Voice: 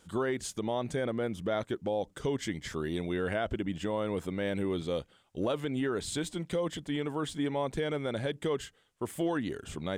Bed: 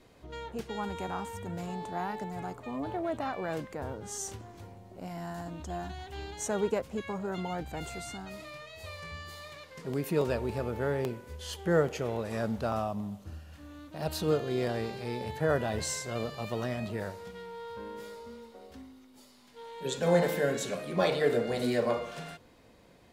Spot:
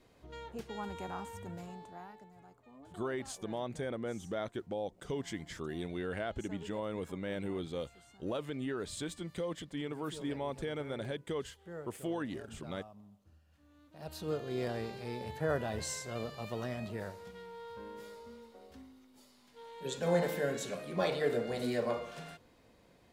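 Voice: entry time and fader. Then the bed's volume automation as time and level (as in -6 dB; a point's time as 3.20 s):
2.85 s, -6.0 dB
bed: 1.46 s -5.5 dB
2.34 s -20 dB
13.40 s -20 dB
14.60 s -5 dB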